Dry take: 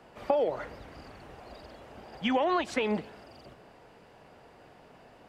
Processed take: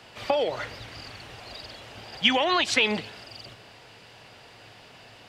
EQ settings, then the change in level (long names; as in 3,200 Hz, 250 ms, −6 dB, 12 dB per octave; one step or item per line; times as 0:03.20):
parametric band 110 Hz +13.5 dB 0.3 octaves
high-shelf EQ 2,100 Hz +8 dB
parametric band 3,700 Hz +10.5 dB 2.1 octaves
0.0 dB